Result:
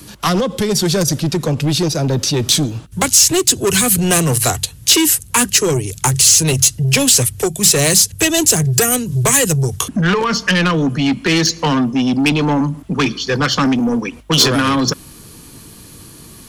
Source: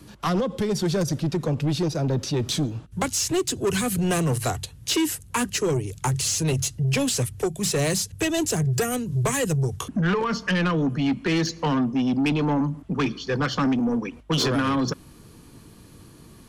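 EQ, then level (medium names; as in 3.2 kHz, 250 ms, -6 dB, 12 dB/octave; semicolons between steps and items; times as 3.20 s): treble shelf 2.3 kHz +8 dB; treble shelf 9.9 kHz +5 dB; +7.0 dB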